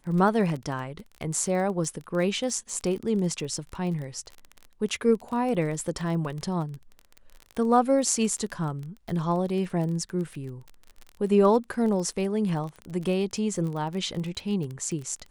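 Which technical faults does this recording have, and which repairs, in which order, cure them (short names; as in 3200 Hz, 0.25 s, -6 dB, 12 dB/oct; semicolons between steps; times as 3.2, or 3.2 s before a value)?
crackle 28/s -32 dBFS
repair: de-click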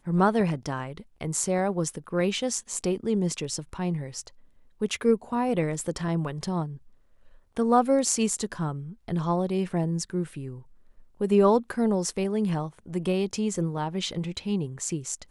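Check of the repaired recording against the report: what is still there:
none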